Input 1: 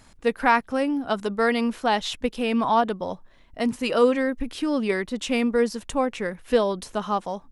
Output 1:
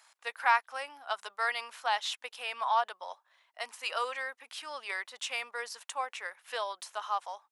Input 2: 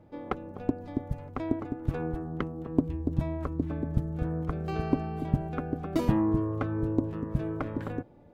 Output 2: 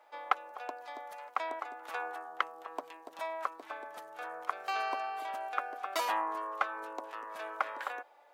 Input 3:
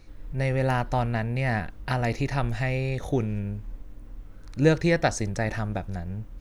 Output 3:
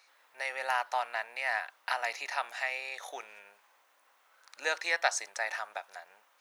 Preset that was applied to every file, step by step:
HPF 790 Hz 24 dB/oct; normalise peaks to -12 dBFS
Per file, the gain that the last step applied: -5.0, +7.5, 0.0 dB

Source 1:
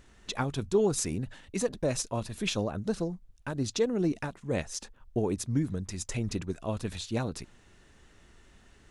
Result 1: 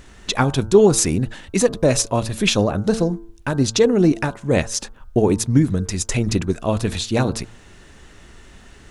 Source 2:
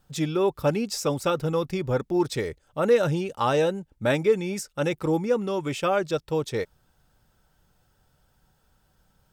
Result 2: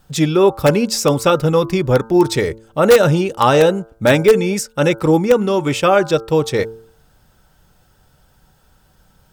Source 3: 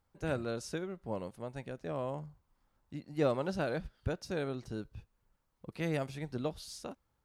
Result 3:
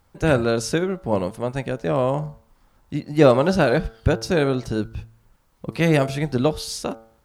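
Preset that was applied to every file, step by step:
de-hum 112.5 Hz, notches 14; in parallel at -7 dB: wrapped overs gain 12.5 dB; on the sum: normalise peaks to -1.5 dBFS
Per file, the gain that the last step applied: +10.0, +8.0, +13.5 dB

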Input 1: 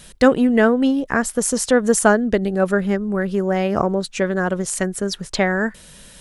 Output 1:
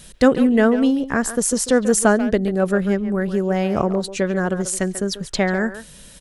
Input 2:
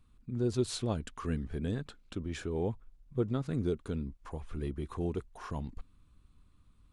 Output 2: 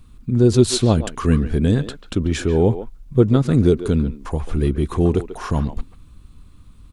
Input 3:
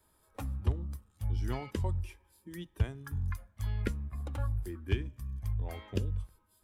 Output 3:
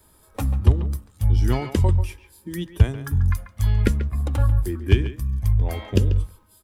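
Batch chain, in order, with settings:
bell 1300 Hz -4 dB 2.9 oct; speakerphone echo 0.14 s, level -11 dB; normalise peaks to -1.5 dBFS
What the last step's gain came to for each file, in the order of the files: +1.0, +18.0, +14.5 dB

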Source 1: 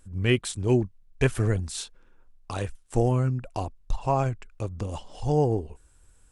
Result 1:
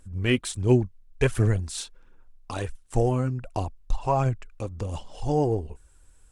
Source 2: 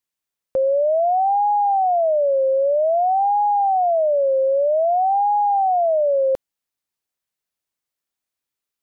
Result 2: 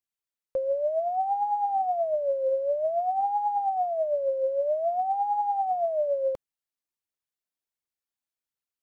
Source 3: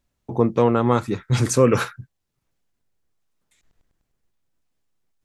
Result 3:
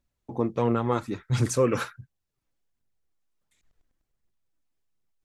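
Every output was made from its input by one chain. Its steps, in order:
phaser 1.4 Hz, delay 4.1 ms, feedback 36%; match loudness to -27 LUFS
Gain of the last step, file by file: 0.0, -9.5, -7.0 dB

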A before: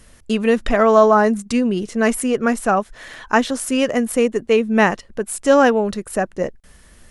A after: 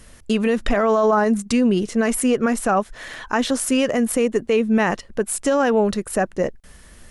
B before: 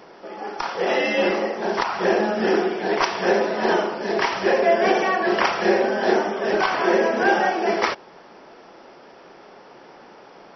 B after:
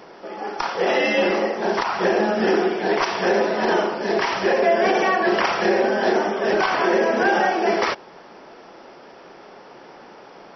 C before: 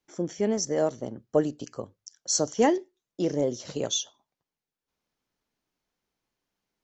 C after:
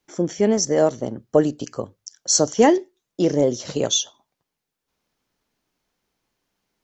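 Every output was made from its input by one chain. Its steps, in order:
limiter -11.5 dBFS; match loudness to -20 LUFS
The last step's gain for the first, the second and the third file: +2.0, +2.0, +7.5 dB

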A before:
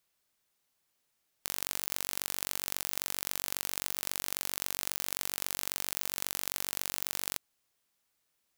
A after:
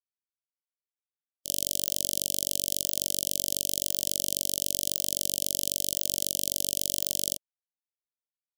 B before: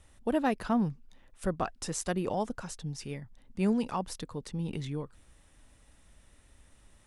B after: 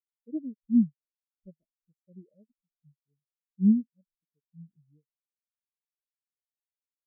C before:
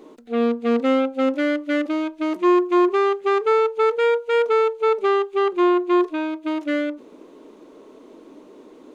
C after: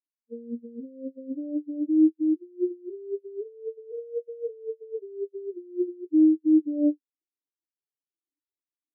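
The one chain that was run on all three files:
negative-ratio compressor -24 dBFS, ratio -1; Chebyshev band-stop 610–3000 Hz, order 4; spectral expander 4:1; match loudness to -27 LUFS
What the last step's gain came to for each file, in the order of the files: +7.5, +4.5, +2.0 dB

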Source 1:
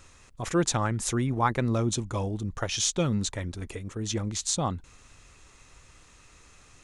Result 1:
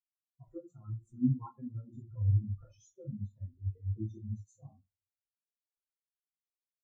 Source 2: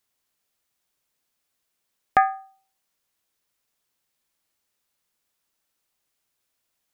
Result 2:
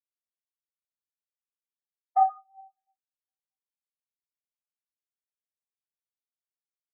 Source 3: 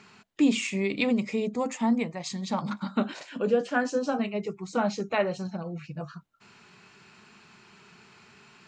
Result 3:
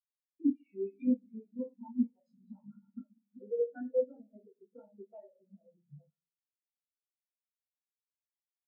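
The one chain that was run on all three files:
notches 60/120/180/240/300/360/420/480/540 Hz; compressor 8:1, threshold -33 dBFS; crossover distortion -53 dBFS; bell 170 Hz -11.5 dB 0.39 oct; two-slope reverb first 0.6 s, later 4.7 s, from -16 dB, DRR -4.5 dB; dynamic EQ 220 Hz, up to +4 dB, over -49 dBFS, Q 2.6; spectral expander 4:1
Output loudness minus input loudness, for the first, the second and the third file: -8.0, -2.5, -6.5 LU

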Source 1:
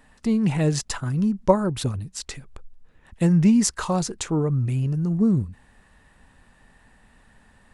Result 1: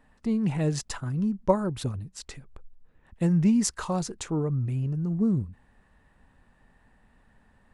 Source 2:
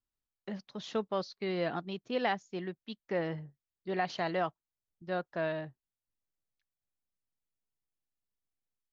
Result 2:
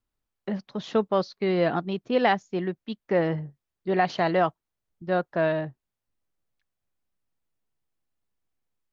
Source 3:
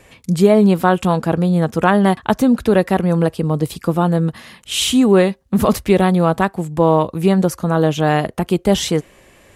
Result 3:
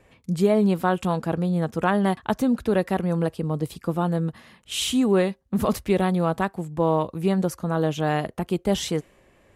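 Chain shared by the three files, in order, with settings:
mismatched tape noise reduction decoder only; normalise peaks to -9 dBFS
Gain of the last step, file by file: -4.5, +10.0, -8.0 dB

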